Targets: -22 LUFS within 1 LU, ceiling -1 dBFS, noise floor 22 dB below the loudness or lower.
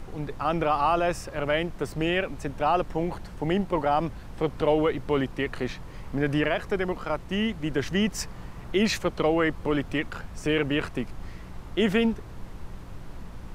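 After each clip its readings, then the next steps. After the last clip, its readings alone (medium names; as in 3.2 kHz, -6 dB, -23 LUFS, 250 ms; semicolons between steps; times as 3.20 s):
hum 60 Hz; highest harmonic 180 Hz; hum level -45 dBFS; noise floor -42 dBFS; noise floor target -49 dBFS; loudness -27.0 LUFS; peak level -11.5 dBFS; loudness target -22.0 LUFS
-> de-hum 60 Hz, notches 3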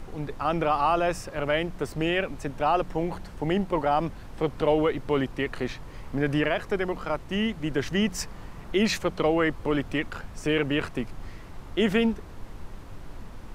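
hum not found; noise floor -43 dBFS; noise floor target -49 dBFS
-> noise print and reduce 6 dB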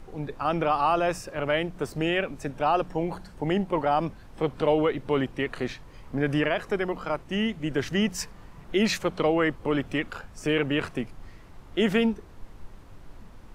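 noise floor -48 dBFS; noise floor target -49 dBFS
-> noise print and reduce 6 dB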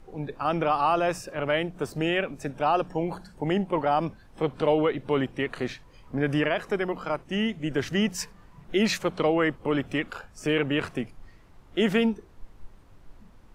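noise floor -53 dBFS; loudness -27.0 LUFS; peak level -12.0 dBFS; loudness target -22.0 LUFS
-> trim +5 dB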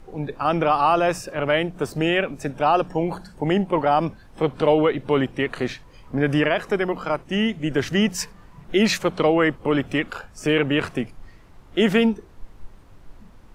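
loudness -22.0 LUFS; peak level -7.0 dBFS; noise floor -48 dBFS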